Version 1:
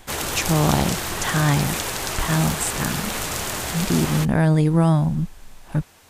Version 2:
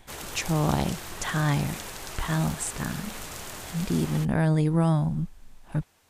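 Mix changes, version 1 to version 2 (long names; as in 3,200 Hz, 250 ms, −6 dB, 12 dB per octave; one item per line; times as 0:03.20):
speech −5.5 dB
background −12.0 dB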